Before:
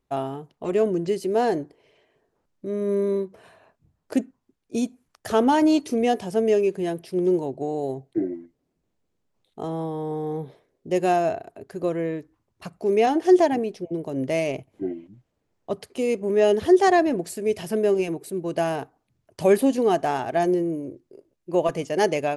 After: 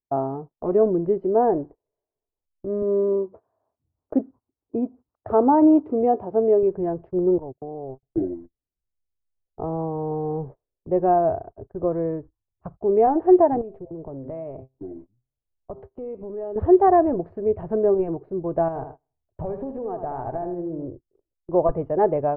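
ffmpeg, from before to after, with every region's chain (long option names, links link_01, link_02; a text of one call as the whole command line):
ffmpeg -i in.wav -filter_complex "[0:a]asettb=1/sr,asplit=3[link_01][link_02][link_03];[link_01]atrim=end=2.824[link_04];[link_02]atrim=start=2.82:end=6.63,asetpts=PTS-STARTPTS,afade=type=in:duration=0.004:curve=qsin,afade=type=out:start_time=3.806:duration=0.004:curve=qsin,acompressor=mode=upward:threshold=-41dB:ratio=2.5:attack=3.2:release=140:knee=2.83:detection=peak,highpass=120,equalizer=frequency=170:width_type=q:width=4:gain=-8,equalizer=frequency=300:width_type=q:width=4:gain=4,equalizer=frequency=1700:width_type=q:width=4:gain=-5,lowpass=frequency=6700:width=0.5412,lowpass=frequency=6700:width=1.3066[link_05];[link_03]atrim=start=6.626[link_06];[link_04][link_05]acrossfade=duration=0.004:curve1=hsin:curve2=qsin[link_07];[link_07][link_06]acrossfade=duration=0.004:curve1=qsin:curve2=hsin,asettb=1/sr,asplit=3[link_08][link_09][link_10];[link_08]atrim=end=7.384[link_11];[link_09]atrim=start=7.38:end=8.03,asetpts=PTS-STARTPTS,afade=type=in:duration=0.004:curve=qsin,afade=type=out:start_time=0.646:duration=0.004:curve=qsin,lowpass=frequency=1800:poles=1,agate=range=-35dB:threshold=-30dB:ratio=16:release=100:detection=peak,acompressor=threshold=-35dB:ratio=2.5:attack=3.2:release=140:knee=1:detection=peak[link_12];[link_10]atrim=start=8.026[link_13];[link_11][link_12]acrossfade=duration=0.004:curve1=hsin:curve2=qsin[link_14];[link_14][link_13]acrossfade=duration=0.004:curve1=qsin:curve2=hsin,asettb=1/sr,asplit=3[link_15][link_16][link_17];[link_15]atrim=end=13.614[link_18];[link_16]atrim=start=13.61:end=16.56,asetpts=PTS-STARTPTS,afade=type=in:duration=0.004:curve=qsin,afade=type=out:start_time=2.946:duration=0.004:curve=qsin,bandreject=frequency=131.8:width_type=h:width=4,bandreject=frequency=263.6:width_type=h:width=4,bandreject=frequency=395.4:width_type=h:width=4,bandreject=frequency=527.2:width_type=h:width=4,bandreject=frequency=659:width_type=h:width=4,bandreject=frequency=790.8:width_type=h:width=4,bandreject=frequency=922.6:width_type=h:width=4,bandreject=frequency=1054.4:width_type=h:width=4,bandreject=frequency=1186.2:width_type=h:width=4,bandreject=frequency=1318:width_type=h:width=4,bandreject=frequency=1449.8:width_type=h:width=4,bandreject=frequency=1581.6:width_type=h:width=4,bandreject=frequency=1713.4:width_type=h:width=4,bandreject=frequency=1845.2:width_type=h:width=4,bandreject=frequency=1977:width_type=h:width=4,bandreject=frequency=2108.8:width_type=h:width=4,bandreject=frequency=2240.6:width_type=h:width=4,bandreject=frequency=2372.4:width_type=h:width=4,bandreject=frequency=2504.2:width_type=h:width=4,bandreject=frequency=2636:width_type=h:width=4,bandreject=frequency=2767.8:width_type=h:width=4,bandreject=frequency=2899.6:width_type=h:width=4,bandreject=frequency=3031.4:width_type=h:width=4,bandreject=frequency=3163.2:width_type=h:width=4,bandreject=frequency=3295:width_type=h:width=4,bandreject=frequency=3426.8:width_type=h:width=4,bandreject=frequency=3558.6:width_type=h:width=4,bandreject=frequency=3690.4:width_type=h:width=4,bandreject=frequency=3822.2:width_type=h:width=4,bandreject=frequency=3954:width_type=h:width=4,bandreject=frequency=4085.8:width_type=h:width=4,bandreject=frequency=4217.6:width_type=h:width=4,bandreject=frequency=4349.4:width_type=h:width=4,bandreject=frequency=4481.2:width_type=h:width=4,bandreject=frequency=4613:width_type=h:width=4,acompressor=threshold=-35dB:ratio=3:attack=3.2:release=140:knee=1:detection=peak[link_19];[link_17]atrim=start=16.556[link_20];[link_18][link_19]acrossfade=duration=0.004:curve1=hsin:curve2=qsin[link_21];[link_21][link_20]acrossfade=duration=0.004:curve1=qsin:curve2=hsin,asettb=1/sr,asplit=3[link_22][link_23][link_24];[link_22]atrim=end=18.684[link_25];[link_23]atrim=start=18.68:end=20.86,asetpts=PTS-STARTPTS,afade=type=in:duration=0.004:curve=qsin,afade=type=out:start_time=2.176:duration=0.004:curve=qsin,acompressor=threshold=-28dB:ratio=10:attack=3.2:release=140:knee=1:detection=peak,aecho=1:1:79|158|237|316|395:0.398|0.159|0.0637|0.0255|0.0102,atrim=end_sample=96138[link_26];[link_24]atrim=start=20.856[link_27];[link_25][link_26]acrossfade=duration=0.004:curve1=hsin:curve2=qsin[link_28];[link_28][link_27]acrossfade=duration=0.004:curve1=qsin:curve2=hsin,agate=range=-26dB:threshold=-41dB:ratio=16:detection=peak,lowpass=frequency=1100:width=0.5412,lowpass=frequency=1100:width=1.3066,asubboost=boost=9:cutoff=67,volume=3.5dB" out.wav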